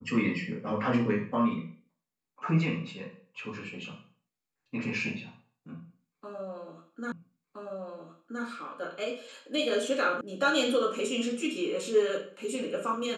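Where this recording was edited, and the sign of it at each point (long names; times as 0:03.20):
0:07.12: the same again, the last 1.32 s
0:10.21: cut off before it has died away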